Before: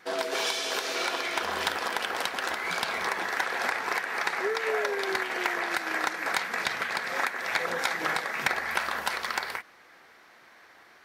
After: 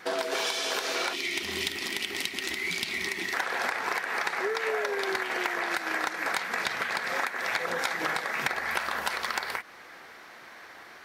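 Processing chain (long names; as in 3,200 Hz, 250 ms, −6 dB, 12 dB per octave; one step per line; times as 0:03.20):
gain on a spectral selection 0:01.13–0:03.34, 420–1,800 Hz −17 dB
downward compressor 2.5 to 1, threshold −37 dBFS, peak gain reduction 11 dB
level +7 dB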